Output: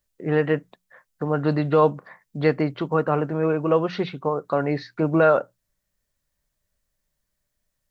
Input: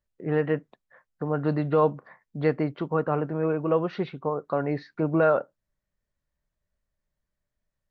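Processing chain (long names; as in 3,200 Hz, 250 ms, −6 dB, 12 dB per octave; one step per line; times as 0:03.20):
high-shelf EQ 3,500 Hz +11 dB
mains-hum notches 60/120/180 Hz
level +3.5 dB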